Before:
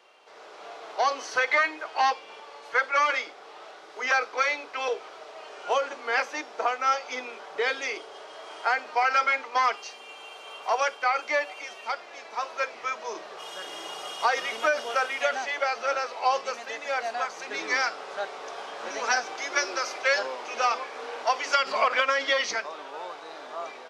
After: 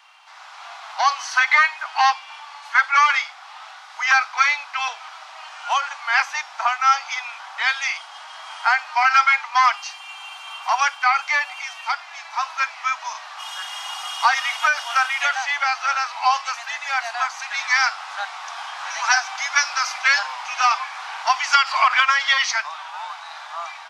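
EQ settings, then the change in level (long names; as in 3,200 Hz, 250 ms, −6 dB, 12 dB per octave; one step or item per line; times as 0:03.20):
Butterworth high-pass 790 Hz 48 dB per octave
+8.0 dB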